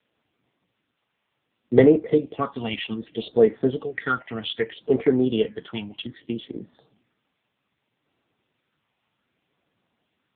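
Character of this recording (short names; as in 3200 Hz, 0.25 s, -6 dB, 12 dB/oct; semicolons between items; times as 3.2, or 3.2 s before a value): phasing stages 6, 0.64 Hz, lowest notch 410–3100 Hz; a quantiser's noise floor 12-bit, dither triangular; AMR-NB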